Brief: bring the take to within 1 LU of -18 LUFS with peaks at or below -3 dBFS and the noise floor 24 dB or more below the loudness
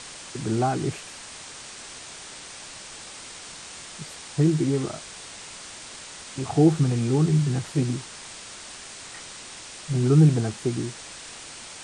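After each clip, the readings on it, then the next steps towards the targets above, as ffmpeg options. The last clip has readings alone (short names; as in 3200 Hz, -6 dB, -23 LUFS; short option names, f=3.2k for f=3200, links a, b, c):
noise floor -42 dBFS; noise floor target -48 dBFS; loudness -23.5 LUFS; peak -7.0 dBFS; loudness target -18.0 LUFS
-> -af "afftdn=nr=6:nf=-42"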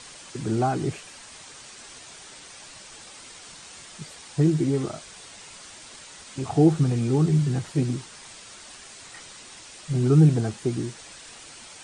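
noise floor -45 dBFS; noise floor target -48 dBFS
-> -af "afftdn=nr=6:nf=-45"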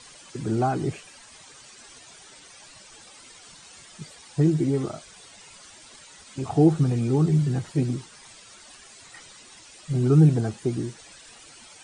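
noise floor -49 dBFS; loudness -23.5 LUFS; peak -7.5 dBFS; loudness target -18.0 LUFS
-> -af "volume=5.5dB,alimiter=limit=-3dB:level=0:latency=1"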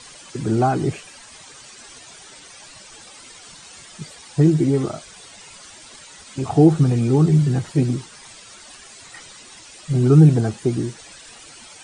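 loudness -18.5 LUFS; peak -3.0 dBFS; noise floor -43 dBFS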